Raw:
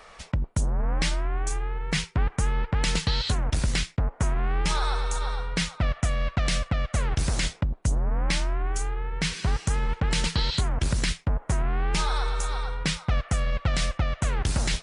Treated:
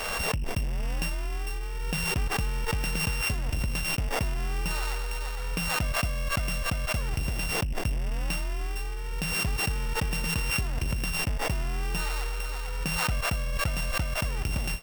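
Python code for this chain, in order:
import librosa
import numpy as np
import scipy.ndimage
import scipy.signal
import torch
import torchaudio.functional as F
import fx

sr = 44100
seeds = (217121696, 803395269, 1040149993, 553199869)

y = np.r_[np.sort(x[:len(x) // 16 * 16].reshape(-1, 16), axis=1).ravel(), x[len(x) // 16 * 16:]]
y = fx.pre_swell(y, sr, db_per_s=21.0)
y = F.gain(torch.from_numpy(y), -5.0).numpy()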